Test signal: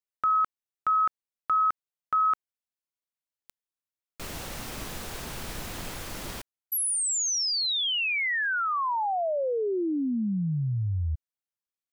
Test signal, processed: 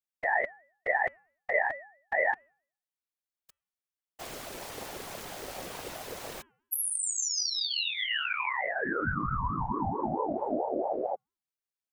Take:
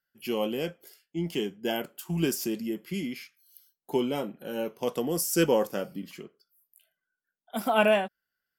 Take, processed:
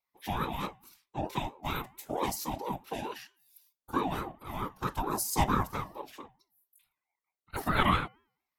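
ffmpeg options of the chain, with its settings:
-af "afftfilt=real='hypot(re,im)*cos(2*PI*random(0))':imag='hypot(re,im)*sin(2*PI*random(1))':win_size=512:overlap=0.75,bandreject=f=317.2:t=h:w=4,bandreject=f=634.4:t=h:w=4,bandreject=f=951.6:t=h:w=4,bandreject=f=1.2688k:t=h:w=4,bandreject=f=1.586k:t=h:w=4,bandreject=f=1.9032k:t=h:w=4,bandreject=f=2.2204k:t=h:w=4,bandreject=f=2.5376k:t=h:w=4,aeval=exprs='val(0)*sin(2*PI*580*n/s+580*0.25/4.5*sin(2*PI*4.5*n/s))':c=same,volume=5dB"

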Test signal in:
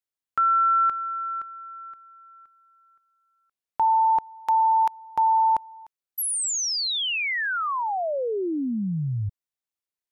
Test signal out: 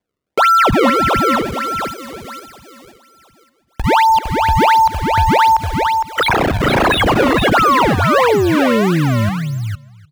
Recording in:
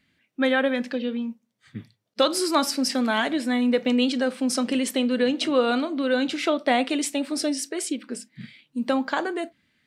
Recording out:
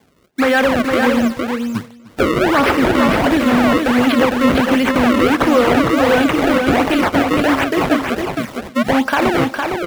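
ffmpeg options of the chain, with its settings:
-filter_complex "[0:a]apsyclip=21.5dB,acrusher=samples=31:mix=1:aa=0.000001:lfo=1:lforange=49.6:lforate=1.4,highpass=f=74:p=1,equalizer=f=170:w=0.32:g=-4,asplit=2[a][b];[b]adelay=302,lowpass=f=4.9k:p=1,volume=-20.5dB,asplit=2[c][d];[d]adelay=302,lowpass=f=4.9k:p=1,volume=0.25[e];[c][e]amix=inputs=2:normalize=0[f];[a][f]amix=inputs=2:normalize=0,acrossover=split=3000[g][h];[h]acompressor=threshold=-26dB:ratio=4:attack=1:release=60[i];[g][i]amix=inputs=2:normalize=0,asplit=2[j][k];[k]aecho=0:1:459:0.596[l];[j][l]amix=inputs=2:normalize=0,volume=-6dB"

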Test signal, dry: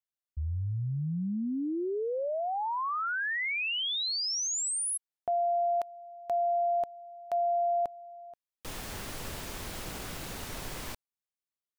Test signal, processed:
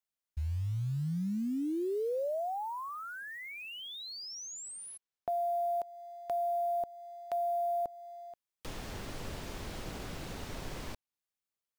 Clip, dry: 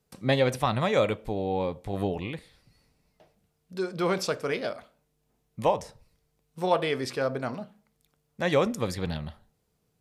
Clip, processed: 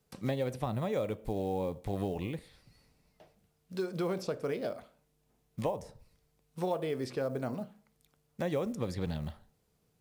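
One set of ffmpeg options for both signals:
-filter_complex "[0:a]acrusher=bits=7:mode=log:mix=0:aa=0.000001,acrossover=split=730|7100[a][b][c];[a]acompressor=threshold=-31dB:ratio=4[d];[b]acompressor=threshold=-47dB:ratio=4[e];[c]acompressor=threshold=-60dB:ratio=4[f];[d][e][f]amix=inputs=3:normalize=0"

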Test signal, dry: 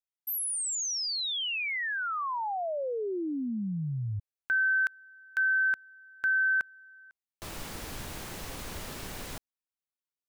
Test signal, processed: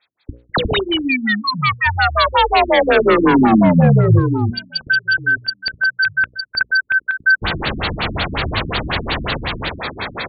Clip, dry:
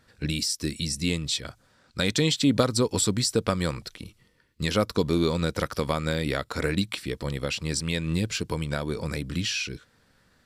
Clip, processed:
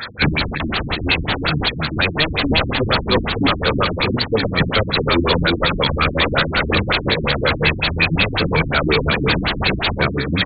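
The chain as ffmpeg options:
-filter_complex "[0:a]asuperstop=centerf=2900:order=12:qfactor=5.5,asplit=2[a][b];[b]aecho=0:1:311:0.398[c];[a][c]amix=inputs=2:normalize=0,asoftclip=type=tanh:threshold=-18.5dB,aderivative,asplit=2[d][e];[e]adelay=966,lowpass=f=1.5k:p=1,volume=-12dB,asplit=2[f][g];[g]adelay=966,lowpass=f=1.5k:p=1,volume=0.19[h];[f][h]amix=inputs=2:normalize=0[i];[d][i]amix=inputs=2:normalize=0,acompressor=threshold=-53dB:ratio=3:attack=2.5:release=118:knee=1:detection=peak,apsyclip=35dB,aeval=exprs='1*sin(PI/2*10*val(0)/1)':c=same,aresample=16000,aresample=44100,equalizer=f=68:t=o:w=2.2:g=11,bandreject=f=60:t=h:w=6,bandreject=f=120:t=h:w=6,bandreject=f=180:t=h:w=6,bandreject=f=240:t=h:w=6,bandreject=f=300:t=h:w=6,bandreject=f=360:t=h:w=6,bandreject=f=420:t=h:w=6,bandreject=f=480:t=h:w=6,bandreject=f=540:t=h:w=6,bandreject=f=600:t=h:w=6,afftfilt=real='re*lt(b*sr/1024,310*pow(4700/310,0.5+0.5*sin(2*PI*5.5*pts/sr)))':imag='im*lt(b*sr/1024,310*pow(4700/310,0.5+0.5*sin(2*PI*5.5*pts/sr)))':win_size=1024:overlap=0.75,volume=-8dB"

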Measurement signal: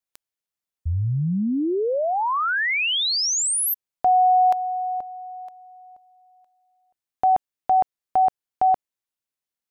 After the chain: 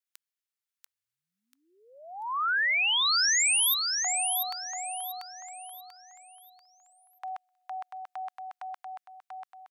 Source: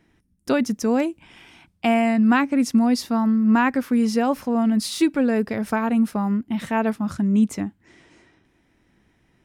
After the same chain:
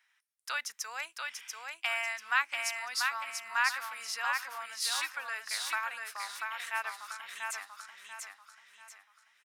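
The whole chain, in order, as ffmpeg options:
-filter_complex "[0:a]highpass=f=1.2k:w=0.5412,highpass=f=1.2k:w=1.3066,asplit=2[a][b];[b]aecho=0:1:689|1378|2067|2756|3445:0.631|0.227|0.0818|0.0294|0.0106[c];[a][c]amix=inputs=2:normalize=0,volume=-3dB"

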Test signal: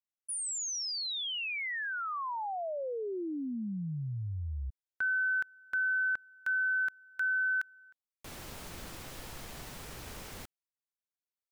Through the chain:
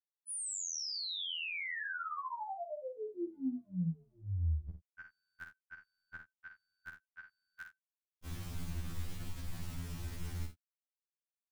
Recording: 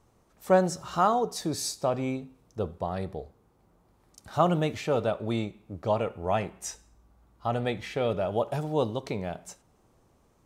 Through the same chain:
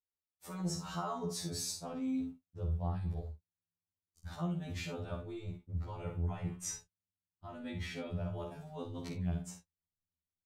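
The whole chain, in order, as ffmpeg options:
-af "agate=range=-42dB:threshold=-51dB:ratio=16:release=114:detection=peak,asubboost=boost=7:cutoff=180,areverse,acompressor=threshold=-33dB:ratio=10:attack=11:release=51:knee=1:detection=peak,areverse,aecho=1:1:49|77:0.447|0.168,afftfilt=real='re*2*eq(mod(b,4),0)':imag='im*2*eq(mod(b,4),0)':win_size=2048:overlap=0.75,volume=-2.5dB"

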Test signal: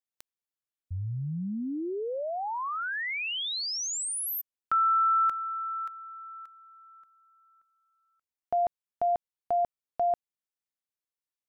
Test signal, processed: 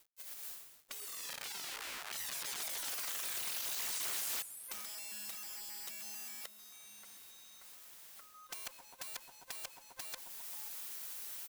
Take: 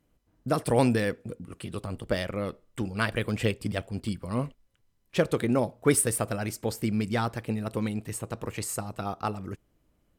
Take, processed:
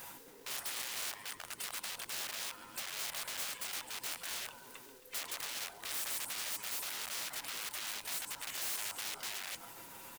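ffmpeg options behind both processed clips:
-af "afftfilt=real='real(if(between(b,1,1008),(2*floor((b-1)/24)+1)*24-b,b),0)':imag='imag(if(between(b,1,1008),(2*floor((b-1)/24)+1)*24-b,b),0)*if(between(b,1,1008),-1,1)':win_size=2048:overlap=0.75,areverse,acompressor=mode=upward:threshold=-37dB:ratio=2.5:attack=0.11:release=245:knee=2.83:detection=peak,areverse,highshelf=f=8.2k:g=9,acompressor=threshold=-29dB:ratio=20:attack=1.3:release=108:knee=6:detection=rms,aecho=1:1:7.3:0.49,aecho=1:1:134|268|402|536:0.126|0.0655|0.034|0.0177,acrusher=bits=4:mode=log:mix=0:aa=0.000001,aeval=exprs='(mod(50.1*val(0)+1,2)-1)/50.1':c=same,alimiter=level_in=21.5dB:limit=-24dB:level=0:latency=1:release=109,volume=-21.5dB,afftfilt=real='re*lt(hypot(re,im),0.00562)':imag='im*lt(hypot(re,im),0.00562)':win_size=1024:overlap=0.75,lowshelf=f=290:g=-11.5,acrusher=bits=11:mix=0:aa=0.000001,volume=12.5dB"

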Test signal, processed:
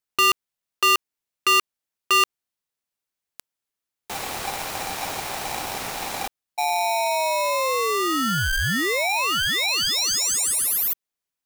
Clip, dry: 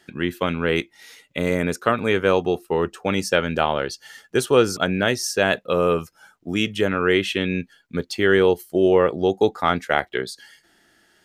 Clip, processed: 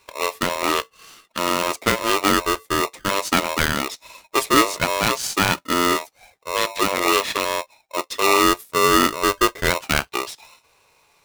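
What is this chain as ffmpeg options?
-af "aeval=exprs='val(0)*sgn(sin(2*PI*790*n/s))':c=same"

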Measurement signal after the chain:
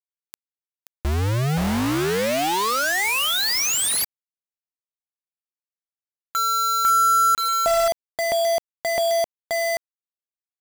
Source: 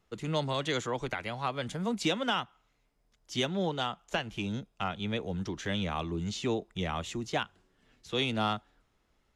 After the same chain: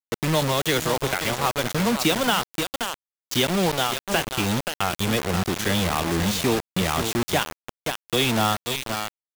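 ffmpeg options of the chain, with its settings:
-filter_complex "[0:a]aecho=1:1:528:0.335,asplit=2[a][b];[b]acompressor=threshold=-37dB:ratio=6,volume=2.5dB[c];[a][c]amix=inputs=2:normalize=0,acrusher=bits=4:mix=0:aa=0.000001,volume=5dB"

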